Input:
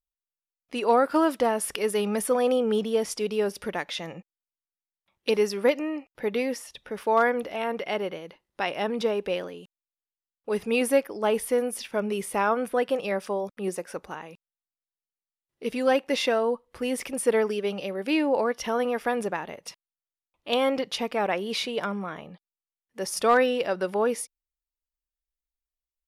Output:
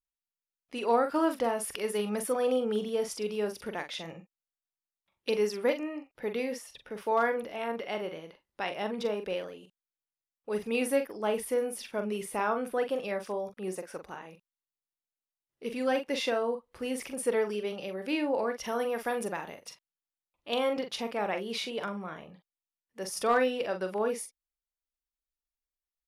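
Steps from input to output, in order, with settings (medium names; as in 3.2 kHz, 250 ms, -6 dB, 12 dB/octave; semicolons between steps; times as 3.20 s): 18.66–19.61 s: treble shelf 6.7 kHz +10 dB; doubling 43 ms -8 dB; trim -6 dB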